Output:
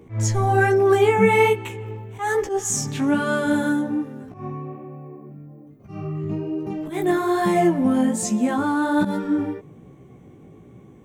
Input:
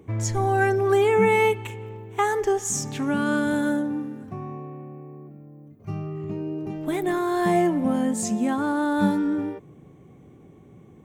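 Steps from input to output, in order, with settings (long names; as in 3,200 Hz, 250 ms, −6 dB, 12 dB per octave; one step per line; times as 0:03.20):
volume swells 116 ms
chorus effect 1.2 Hz, delay 15 ms, depth 4.8 ms
level +6 dB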